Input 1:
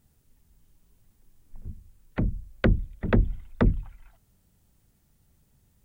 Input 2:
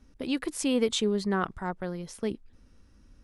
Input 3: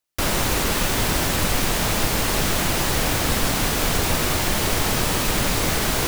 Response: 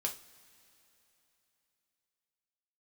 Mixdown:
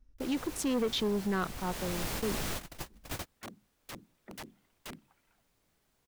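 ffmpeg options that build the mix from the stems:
-filter_complex "[0:a]highpass=f=220:w=0.5412,highpass=f=220:w=1.3066,aeval=exprs='(mod(22.4*val(0)+1,2)-1)/22.4':c=same,adelay=1250,volume=0.282[s0];[1:a]afwtdn=0.0112,volume=0.944,asplit=2[s1][s2];[2:a]volume=0.224,afade=t=in:st=1.55:d=0.52:silence=0.298538[s3];[s2]apad=whole_len=267715[s4];[s3][s4]sidechaingate=range=0.00891:threshold=0.002:ratio=16:detection=peak[s5];[s0][s1][s5]amix=inputs=3:normalize=0,asoftclip=type=tanh:threshold=0.0562"

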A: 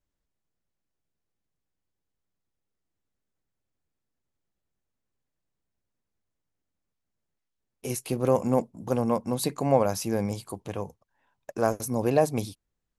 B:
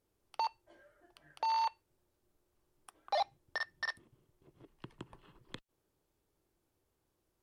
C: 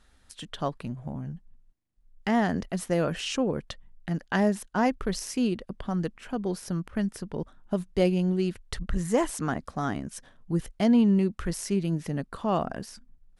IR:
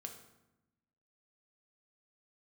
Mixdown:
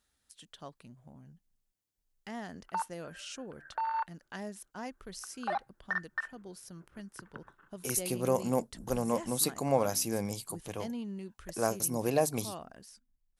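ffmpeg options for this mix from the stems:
-filter_complex "[0:a]volume=0.501[s0];[1:a]lowpass=f=1500:t=q:w=7.6,adelay=2350,volume=0.631[s1];[2:a]asubboost=boost=2:cutoff=73,volume=0.141,asplit=2[s2][s3];[s3]apad=whole_len=431144[s4];[s1][s4]sidechaingate=range=0.0224:threshold=0.00112:ratio=16:detection=peak[s5];[s0][s5][s2]amix=inputs=3:normalize=0,highpass=f=72:p=1,highshelf=f=3900:g=11.5"

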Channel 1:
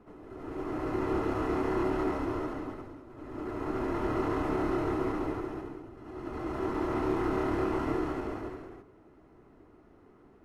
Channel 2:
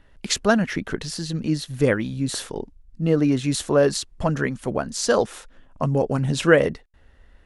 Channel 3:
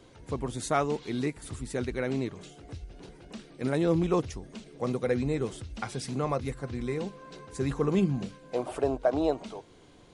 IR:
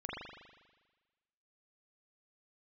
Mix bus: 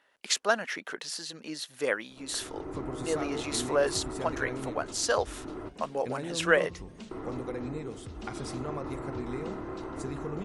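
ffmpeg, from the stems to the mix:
-filter_complex "[0:a]lowpass=2200,acompressor=threshold=0.02:ratio=6,adelay=2100,volume=0.841,asplit=3[s0][s1][s2];[s0]atrim=end=5.69,asetpts=PTS-STARTPTS,afade=t=out:st=5.686:d=0.004:c=hsin[s3];[s1]atrim=start=5.69:end=7.11,asetpts=PTS-STARTPTS,volume=0[s4];[s2]atrim=start=7.11,asetpts=PTS-STARTPTS,afade=t=in:d=0.004:c=hsin[s5];[s3][s4][s5]concat=n=3:v=0:a=1[s6];[1:a]highpass=590,volume=0.631[s7];[2:a]acompressor=threshold=0.0251:ratio=6,adelay=2450,volume=0.668,asplit=2[s8][s9];[s9]volume=0.266[s10];[3:a]atrim=start_sample=2205[s11];[s10][s11]afir=irnorm=-1:irlink=0[s12];[s6][s7][s8][s12]amix=inputs=4:normalize=0"

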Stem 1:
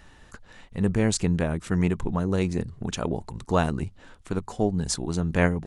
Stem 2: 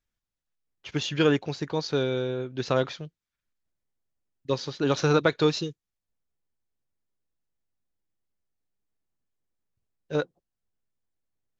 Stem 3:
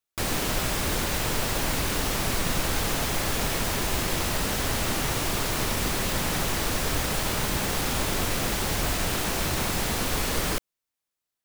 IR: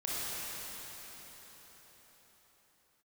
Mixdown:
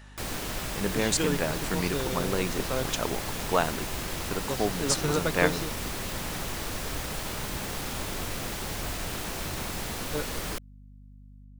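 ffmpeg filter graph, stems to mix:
-filter_complex "[0:a]highpass=f=570:p=1,volume=1.19[s0];[1:a]aeval=exprs='val(0)+0.00891*(sin(2*PI*50*n/s)+sin(2*PI*2*50*n/s)/2+sin(2*PI*3*50*n/s)/3+sin(2*PI*4*50*n/s)/4+sin(2*PI*5*50*n/s)/5)':c=same,volume=0.447[s1];[2:a]volume=0.447[s2];[s0][s1][s2]amix=inputs=3:normalize=0"

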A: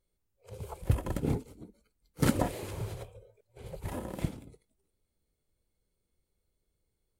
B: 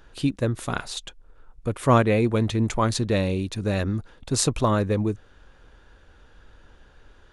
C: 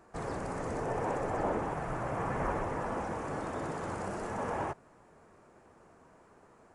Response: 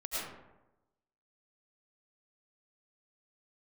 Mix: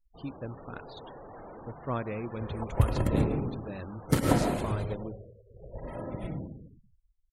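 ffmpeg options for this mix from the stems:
-filter_complex "[0:a]adelay=1900,volume=1.06,asplit=2[s0][s1];[s1]volume=0.668[s2];[1:a]lowpass=5600,bandreject=f=50:t=h:w=6,bandreject=f=100:t=h:w=6,volume=0.168,asplit=3[s3][s4][s5];[s4]volume=0.075[s6];[2:a]afwtdn=0.00631,dynaudnorm=f=170:g=3:m=1.78,asoftclip=type=tanh:threshold=0.0266,volume=0.237,asplit=2[s7][s8];[s8]volume=0.126[s9];[s5]apad=whole_len=401055[s10];[s0][s10]sidechaingate=range=0.0224:threshold=0.00112:ratio=16:detection=peak[s11];[3:a]atrim=start_sample=2205[s12];[s2][s6][s9]amix=inputs=3:normalize=0[s13];[s13][s12]afir=irnorm=-1:irlink=0[s14];[s11][s3][s7][s14]amix=inputs=4:normalize=0,afftfilt=real='re*gte(hypot(re,im),0.00562)':imag='im*gte(hypot(re,im),0.00562)':win_size=1024:overlap=0.75"

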